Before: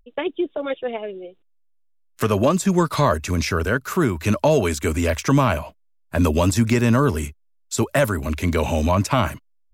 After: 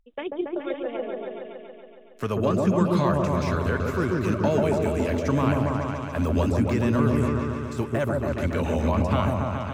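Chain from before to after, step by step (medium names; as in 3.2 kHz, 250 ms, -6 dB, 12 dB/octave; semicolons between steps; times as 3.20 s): de-esser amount 60%; treble shelf 7.1 kHz -7 dB; delay with an opening low-pass 140 ms, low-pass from 750 Hz, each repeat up 1 oct, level 0 dB; trim -7.5 dB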